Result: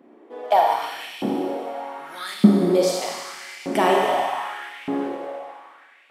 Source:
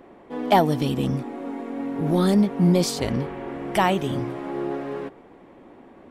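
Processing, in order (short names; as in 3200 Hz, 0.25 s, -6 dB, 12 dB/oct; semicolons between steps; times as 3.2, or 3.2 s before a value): Schroeder reverb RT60 2.5 s, combs from 27 ms, DRR -2 dB; LFO high-pass saw up 0.82 Hz 210–2600 Hz; vocal rider within 5 dB 2 s; gain -5 dB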